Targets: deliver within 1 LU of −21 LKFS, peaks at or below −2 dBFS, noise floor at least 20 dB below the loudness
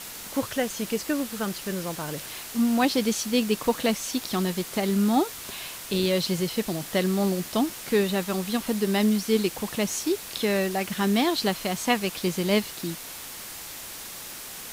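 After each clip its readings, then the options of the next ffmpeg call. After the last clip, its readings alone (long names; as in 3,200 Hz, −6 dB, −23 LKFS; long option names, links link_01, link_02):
background noise floor −39 dBFS; target noise floor −47 dBFS; integrated loudness −26.5 LKFS; sample peak −9.5 dBFS; target loudness −21.0 LKFS
→ -af "afftdn=noise_reduction=8:noise_floor=-39"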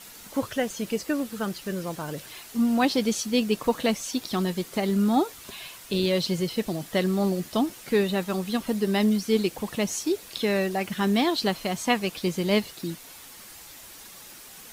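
background noise floor −46 dBFS; target noise floor −47 dBFS
→ -af "afftdn=noise_reduction=6:noise_floor=-46"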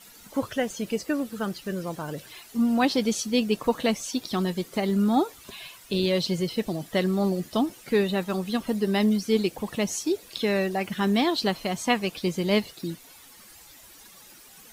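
background noise floor −50 dBFS; integrated loudness −26.5 LKFS; sample peak −10.0 dBFS; target loudness −21.0 LKFS
→ -af "volume=5.5dB"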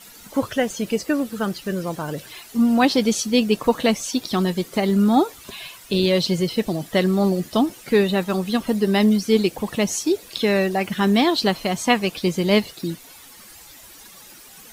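integrated loudness −21.0 LKFS; sample peak −4.5 dBFS; background noise floor −45 dBFS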